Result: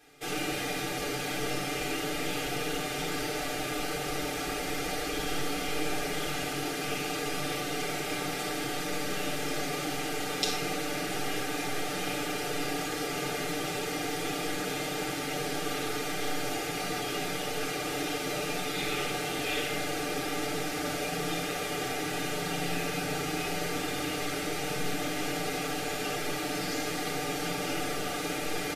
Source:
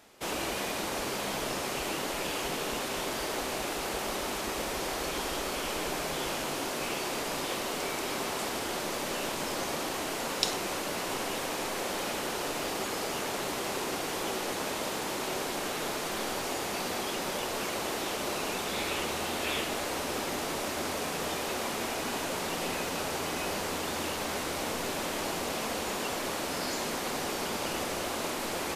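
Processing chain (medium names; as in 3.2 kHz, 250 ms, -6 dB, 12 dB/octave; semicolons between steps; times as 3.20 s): Butterworth band-stop 1 kHz, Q 3.6; peaking EQ 2.2 kHz +3 dB 0.55 oct; comb 6.7 ms, depth 94%; simulated room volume 2900 m³, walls furnished, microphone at 3.8 m; trim -6 dB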